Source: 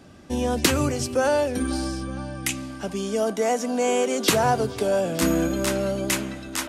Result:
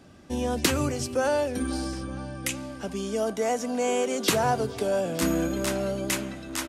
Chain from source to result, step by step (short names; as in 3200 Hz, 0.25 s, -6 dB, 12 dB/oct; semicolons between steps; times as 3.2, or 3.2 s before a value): outdoor echo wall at 220 m, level -19 dB; gain -3.5 dB